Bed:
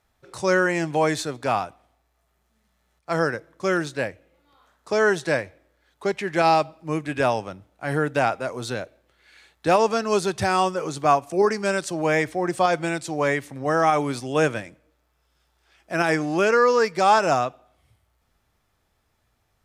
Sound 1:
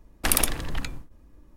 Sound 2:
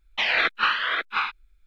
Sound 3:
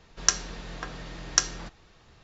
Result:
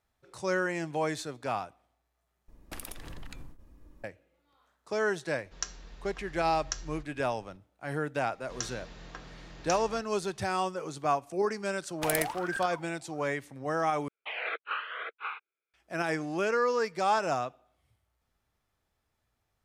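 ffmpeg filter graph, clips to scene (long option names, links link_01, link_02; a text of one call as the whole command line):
ffmpeg -i bed.wav -i cue0.wav -i cue1.wav -i cue2.wav -filter_complex "[1:a]asplit=2[link_01][link_02];[3:a]asplit=2[link_03][link_04];[0:a]volume=-9.5dB[link_05];[link_01]acompressor=threshold=-36dB:ratio=6:attack=3.2:release=140:knee=1:detection=peak[link_06];[link_03]asubboost=boost=10:cutoff=89[link_07];[link_04]alimiter=limit=-9.5dB:level=0:latency=1:release=39[link_08];[link_02]aeval=exprs='val(0)*sin(2*PI*1100*n/s+1100*0.45/1.3*sin(2*PI*1.3*n/s))':channel_layout=same[link_09];[2:a]highpass=frequency=410:width=0.5412,highpass=frequency=410:width=1.3066,equalizer=frequency=450:width_type=q:width=4:gain=7,equalizer=frequency=950:width_type=q:width=4:gain=-5,equalizer=frequency=1800:width_type=q:width=4:gain=-8,lowpass=frequency=2600:width=0.5412,lowpass=frequency=2600:width=1.3066[link_10];[link_05]asplit=3[link_11][link_12][link_13];[link_11]atrim=end=2.484[link_14];[link_06]atrim=end=1.56,asetpts=PTS-STARTPTS,volume=-2.5dB[link_15];[link_12]atrim=start=4.036:end=14.084[link_16];[link_10]atrim=end=1.66,asetpts=PTS-STARTPTS,volume=-9dB[link_17];[link_13]atrim=start=15.736[link_18];[link_07]atrim=end=2.23,asetpts=PTS-STARTPTS,volume=-13.5dB,afade=type=in:duration=0.004:curve=hsin,afade=type=out:start_time=2.226:duration=0.004:curve=hsin,adelay=5340[link_19];[link_08]atrim=end=2.23,asetpts=PTS-STARTPTS,volume=-8dB,afade=type=in:duration=0.004:curve=hsin,afade=type=out:start_time=2.226:duration=0.004:curve=hsin,adelay=8320[link_20];[link_09]atrim=end=1.56,asetpts=PTS-STARTPTS,volume=-8dB,afade=type=in:duration=0.004:curve=hsin,afade=type=out:start_time=1.556:duration=0.004:curve=hsin,adelay=519498S[link_21];[link_14][link_15]acrossfade=duration=0.004:curve1=hsin:curve2=hsin[link_22];[link_22][link_16]acrossfade=duration=0.004:curve1=hsin:curve2=hsin[link_23];[link_23][link_17]acrossfade=duration=0.004:curve1=hsin:curve2=hsin[link_24];[link_24][link_18]acrossfade=duration=0.004:curve1=hsin:curve2=hsin[link_25];[link_25][link_19][link_20][link_21]amix=inputs=4:normalize=0" out.wav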